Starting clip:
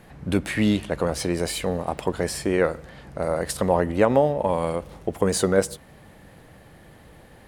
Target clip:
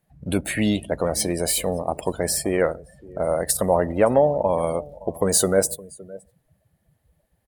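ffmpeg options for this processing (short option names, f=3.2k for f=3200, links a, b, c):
-filter_complex "[0:a]aemphasis=mode=production:type=50fm,asplit=2[a][b];[b]acrusher=bits=4:mix=0:aa=0.000001,volume=-10.5dB[c];[a][c]amix=inputs=2:normalize=0,asoftclip=type=tanh:threshold=-3dB,equalizer=f=640:t=o:w=0.4:g=6,asplit=2[d][e];[e]aecho=0:1:566:0.112[f];[d][f]amix=inputs=2:normalize=0,afftdn=nr=24:nf=-33,volume=-2.5dB"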